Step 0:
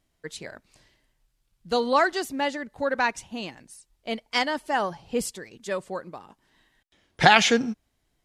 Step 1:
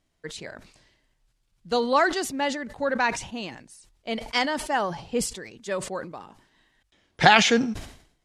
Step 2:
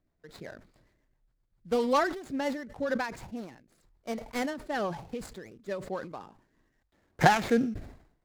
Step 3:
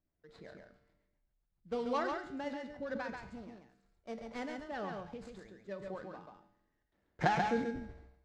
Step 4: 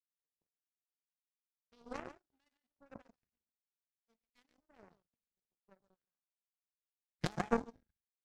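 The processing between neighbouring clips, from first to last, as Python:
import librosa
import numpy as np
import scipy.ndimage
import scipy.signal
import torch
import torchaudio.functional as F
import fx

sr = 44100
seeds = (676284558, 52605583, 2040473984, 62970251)

y1 = scipy.signal.sosfilt(scipy.signal.butter(2, 9600.0, 'lowpass', fs=sr, output='sos'), x)
y1 = fx.hum_notches(y1, sr, base_hz=50, count=2)
y1 = fx.sustainer(y1, sr, db_per_s=94.0)
y2 = scipy.ndimage.median_filter(y1, 15, mode='constant')
y2 = fx.rotary_switch(y2, sr, hz=7.5, then_hz=1.0, switch_at_s=2.83)
y2 = fx.end_taper(y2, sr, db_per_s=110.0)
y3 = fx.air_absorb(y2, sr, metres=96.0)
y3 = fx.comb_fb(y3, sr, f0_hz=65.0, decay_s=0.85, harmonics='odd', damping=0.0, mix_pct=70)
y3 = y3 + 10.0 ** (-4.5 / 20.0) * np.pad(y3, (int(137 * sr / 1000.0), 0))[:len(y3)]
y4 = fx.phaser_stages(y3, sr, stages=2, low_hz=470.0, high_hz=2700.0, hz=1.1, feedback_pct=40)
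y4 = fx.power_curve(y4, sr, exponent=3.0)
y4 = y4 * librosa.db_to_amplitude(8.0)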